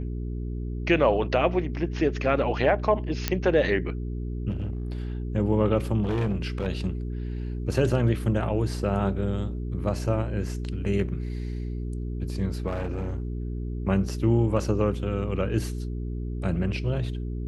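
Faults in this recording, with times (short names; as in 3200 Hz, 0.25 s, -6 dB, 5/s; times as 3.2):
hum 60 Hz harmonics 7 -31 dBFS
3.28 pop -7 dBFS
4.49–5.18 clipped -26 dBFS
6.02–6.67 clipped -22 dBFS
12.67–13.4 clipped -25.5 dBFS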